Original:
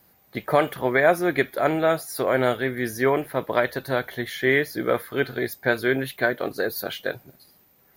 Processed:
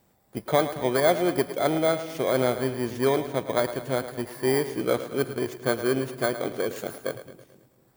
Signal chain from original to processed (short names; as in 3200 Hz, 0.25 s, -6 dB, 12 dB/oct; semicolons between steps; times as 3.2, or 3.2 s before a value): FFT order left unsorted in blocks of 16 samples; high shelf 2800 Hz -10.5 dB; split-band echo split 300 Hz, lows 0.239 s, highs 0.109 s, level -12 dB; gain -1 dB